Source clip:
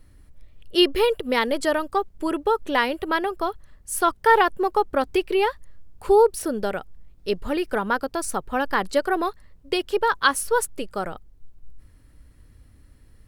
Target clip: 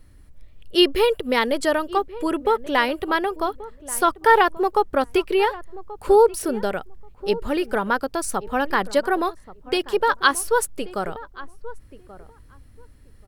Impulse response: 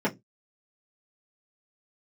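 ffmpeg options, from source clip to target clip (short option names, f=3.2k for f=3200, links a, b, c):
-filter_complex "[0:a]asplit=2[a][b];[b]adelay=1132,lowpass=f=1.2k:p=1,volume=-16.5dB,asplit=2[c][d];[d]adelay=1132,lowpass=f=1.2k:p=1,volume=0.18[e];[a][c][e]amix=inputs=3:normalize=0,volume=1.5dB"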